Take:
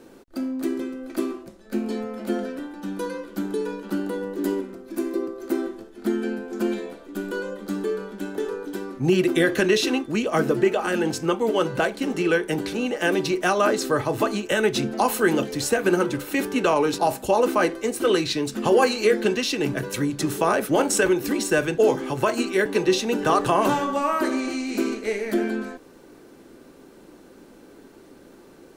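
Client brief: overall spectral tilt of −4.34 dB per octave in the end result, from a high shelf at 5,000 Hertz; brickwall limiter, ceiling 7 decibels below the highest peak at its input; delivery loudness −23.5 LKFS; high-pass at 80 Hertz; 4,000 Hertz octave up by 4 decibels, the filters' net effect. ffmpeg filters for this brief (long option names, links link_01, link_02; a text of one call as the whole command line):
ffmpeg -i in.wav -af "highpass=80,equalizer=frequency=4000:width_type=o:gain=7.5,highshelf=frequency=5000:gain=-6,volume=2dB,alimiter=limit=-12dB:level=0:latency=1" out.wav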